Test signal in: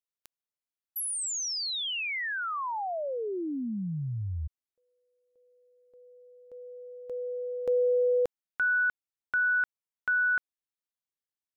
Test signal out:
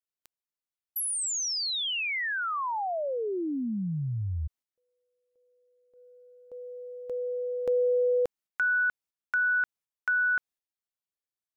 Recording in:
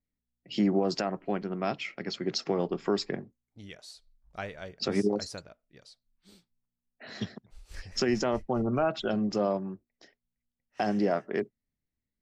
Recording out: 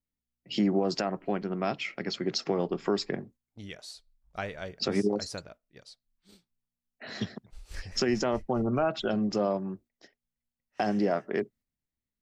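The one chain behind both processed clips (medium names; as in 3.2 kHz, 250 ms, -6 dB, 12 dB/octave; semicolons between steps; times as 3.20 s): gate -55 dBFS, range -7 dB; in parallel at -1.5 dB: compression, threshold -34 dBFS; on the sum: trim -2 dB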